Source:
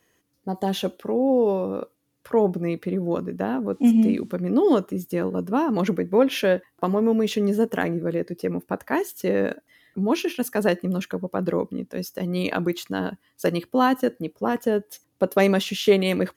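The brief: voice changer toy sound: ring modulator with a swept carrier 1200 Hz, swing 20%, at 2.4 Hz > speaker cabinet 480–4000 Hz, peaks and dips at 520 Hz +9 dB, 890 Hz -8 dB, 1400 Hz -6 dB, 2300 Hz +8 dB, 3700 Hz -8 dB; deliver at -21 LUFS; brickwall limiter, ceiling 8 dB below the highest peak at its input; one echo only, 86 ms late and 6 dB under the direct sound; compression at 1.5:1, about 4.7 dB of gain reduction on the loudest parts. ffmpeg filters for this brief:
-af "acompressor=threshold=-25dB:ratio=1.5,alimiter=limit=-18dB:level=0:latency=1,aecho=1:1:86:0.501,aeval=exprs='val(0)*sin(2*PI*1200*n/s+1200*0.2/2.4*sin(2*PI*2.4*n/s))':c=same,highpass=480,equalizer=f=520:t=q:w=4:g=9,equalizer=f=890:t=q:w=4:g=-8,equalizer=f=1.4k:t=q:w=4:g=-6,equalizer=f=2.3k:t=q:w=4:g=8,equalizer=f=3.7k:t=q:w=4:g=-8,lowpass=f=4k:w=0.5412,lowpass=f=4k:w=1.3066,volume=10.5dB"

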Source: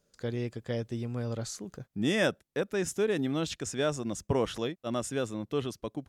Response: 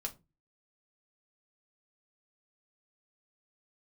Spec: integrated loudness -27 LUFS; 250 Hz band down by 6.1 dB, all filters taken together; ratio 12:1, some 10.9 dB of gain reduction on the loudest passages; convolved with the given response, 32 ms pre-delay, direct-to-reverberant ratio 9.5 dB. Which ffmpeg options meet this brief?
-filter_complex "[0:a]equalizer=f=250:t=o:g=-8,acompressor=threshold=-34dB:ratio=12,asplit=2[a][b];[1:a]atrim=start_sample=2205,adelay=32[c];[b][c]afir=irnorm=-1:irlink=0,volume=-9dB[d];[a][d]amix=inputs=2:normalize=0,volume=12.5dB"

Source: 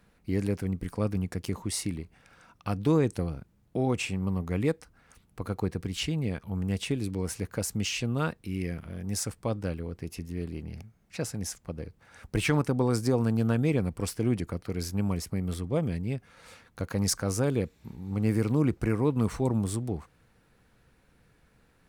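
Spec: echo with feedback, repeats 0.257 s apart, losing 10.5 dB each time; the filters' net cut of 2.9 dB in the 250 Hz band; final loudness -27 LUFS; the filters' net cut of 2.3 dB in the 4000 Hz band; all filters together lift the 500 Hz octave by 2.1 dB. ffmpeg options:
-af "equalizer=f=250:t=o:g=-5,equalizer=f=500:t=o:g=4,equalizer=f=4k:t=o:g=-3.5,aecho=1:1:257|514|771:0.299|0.0896|0.0269,volume=3.5dB"

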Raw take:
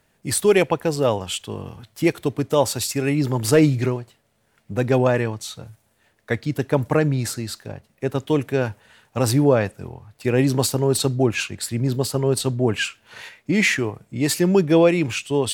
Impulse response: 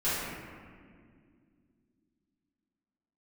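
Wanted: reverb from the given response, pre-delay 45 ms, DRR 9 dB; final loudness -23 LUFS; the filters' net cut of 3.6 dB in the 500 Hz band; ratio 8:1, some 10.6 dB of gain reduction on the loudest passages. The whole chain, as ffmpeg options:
-filter_complex "[0:a]equalizer=f=500:t=o:g=-4.5,acompressor=threshold=-24dB:ratio=8,asplit=2[a][b];[1:a]atrim=start_sample=2205,adelay=45[c];[b][c]afir=irnorm=-1:irlink=0,volume=-19.5dB[d];[a][d]amix=inputs=2:normalize=0,volume=6dB"

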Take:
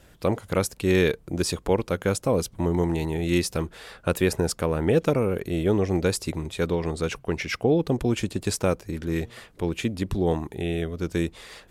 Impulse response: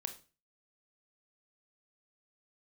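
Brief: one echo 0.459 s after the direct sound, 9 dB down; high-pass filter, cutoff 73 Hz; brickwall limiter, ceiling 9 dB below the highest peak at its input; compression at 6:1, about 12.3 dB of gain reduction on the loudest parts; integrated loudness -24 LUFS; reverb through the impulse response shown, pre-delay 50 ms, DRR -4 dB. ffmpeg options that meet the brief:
-filter_complex "[0:a]highpass=73,acompressor=threshold=-30dB:ratio=6,alimiter=limit=-23.5dB:level=0:latency=1,aecho=1:1:459:0.355,asplit=2[a][b];[1:a]atrim=start_sample=2205,adelay=50[c];[b][c]afir=irnorm=-1:irlink=0,volume=5.5dB[d];[a][d]amix=inputs=2:normalize=0,volume=7dB"

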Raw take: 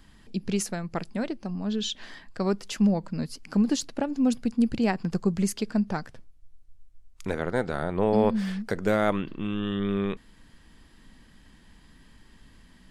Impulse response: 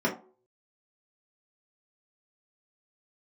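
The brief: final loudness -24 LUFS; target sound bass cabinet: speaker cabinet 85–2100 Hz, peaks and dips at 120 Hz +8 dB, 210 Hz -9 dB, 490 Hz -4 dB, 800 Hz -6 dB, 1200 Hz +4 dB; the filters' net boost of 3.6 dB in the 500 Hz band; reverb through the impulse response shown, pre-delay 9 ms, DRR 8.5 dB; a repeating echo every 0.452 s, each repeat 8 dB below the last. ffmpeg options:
-filter_complex "[0:a]equalizer=f=500:t=o:g=7.5,aecho=1:1:452|904|1356|1808|2260:0.398|0.159|0.0637|0.0255|0.0102,asplit=2[a][b];[1:a]atrim=start_sample=2205,adelay=9[c];[b][c]afir=irnorm=-1:irlink=0,volume=-20dB[d];[a][d]amix=inputs=2:normalize=0,highpass=f=85:w=0.5412,highpass=f=85:w=1.3066,equalizer=f=120:t=q:w=4:g=8,equalizer=f=210:t=q:w=4:g=-9,equalizer=f=490:t=q:w=4:g=-4,equalizer=f=800:t=q:w=4:g=-6,equalizer=f=1.2k:t=q:w=4:g=4,lowpass=f=2.1k:w=0.5412,lowpass=f=2.1k:w=1.3066,volume=2dB"

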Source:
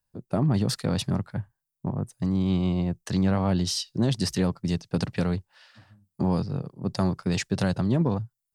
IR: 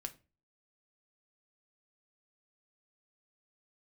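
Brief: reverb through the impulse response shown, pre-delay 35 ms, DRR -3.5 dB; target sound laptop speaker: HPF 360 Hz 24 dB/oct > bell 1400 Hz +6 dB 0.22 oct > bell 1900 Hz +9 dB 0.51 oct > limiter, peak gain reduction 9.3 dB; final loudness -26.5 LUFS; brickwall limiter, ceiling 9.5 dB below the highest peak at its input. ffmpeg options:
-filter_complex "[0:a]alimiter=limit=-21.5dB:level=0:latency=1,asplit=2[a][b];[1:a]atrim=start_sample=2205,adelay=35[c];[b][c]afir=irnorm=-1:irlink=0,volume=6dB[d];[a][d]amix=inputs=2:normalize=0,highpass=f=360:w=0.5412,highpass=f=360:w=1.3066,equalizer=f=1.4k:t=o:w=0.22:g=6,equalizer=f=1.9k:t=o:w=0.51:g=9,volume=9dB,alimiter=limit=-15dB:level=0:latency=1"

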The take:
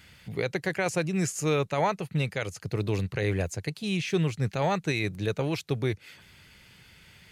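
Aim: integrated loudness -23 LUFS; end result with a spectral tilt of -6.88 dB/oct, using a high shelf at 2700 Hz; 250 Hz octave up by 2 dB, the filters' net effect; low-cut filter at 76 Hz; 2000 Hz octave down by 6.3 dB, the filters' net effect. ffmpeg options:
-af "highpass=76,equalizer=f=250:t=o:g=3.5,equalizer=f=2k:t=o:g=-5.5,highshelf=f=2.7k:g=-5.5,volume=6dB"

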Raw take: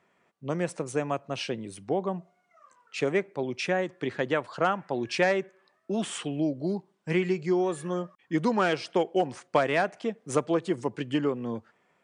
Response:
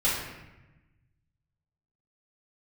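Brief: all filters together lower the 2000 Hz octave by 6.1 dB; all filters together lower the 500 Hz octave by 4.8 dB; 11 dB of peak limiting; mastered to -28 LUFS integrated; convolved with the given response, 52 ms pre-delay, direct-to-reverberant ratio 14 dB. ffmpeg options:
-filter_complex "[0:a]equalizer=f=500:t=o:g=-6,equalizer=f=2k:t=o:g=-7.5,alimiter=limit=-23.5dB:level=0:latency=1,asplit=2[a][b];[1:a]atrim=start_sample=2205,adelay=52[c];[b][c]afir=irnorm=-1:irlink=0,volume=-25.5dB[d];[a][d]amix=inputs=2:normalize=0,volume=7dB"

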